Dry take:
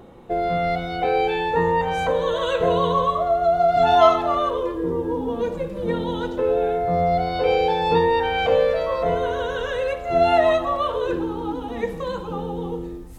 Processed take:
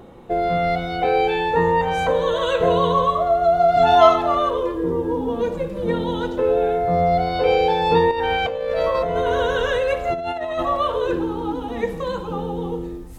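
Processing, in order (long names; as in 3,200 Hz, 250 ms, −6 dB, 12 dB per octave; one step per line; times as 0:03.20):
0:08.11–0:10.63: compressor whose output falls as the input rises −24 dBFS, ratio −1
level +2 dB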